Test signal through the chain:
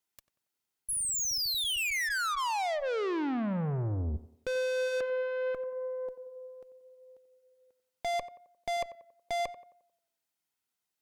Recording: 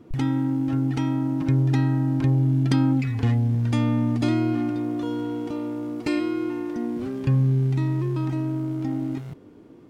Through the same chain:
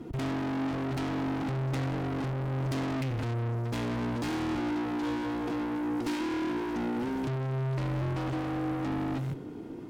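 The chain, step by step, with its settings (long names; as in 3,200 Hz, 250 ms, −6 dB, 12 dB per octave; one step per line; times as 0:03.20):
high-pass filter 57 Hz 6 dB per octave
hard clipping −22 dBFS
notch comb filter 570 Hz
tube saturation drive 39 dB, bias 0.35
on a send: tape delay 90 ms, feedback 49%, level −12.5 dB, low-pass 1,600 Hz
on the sum: level +8.5 dB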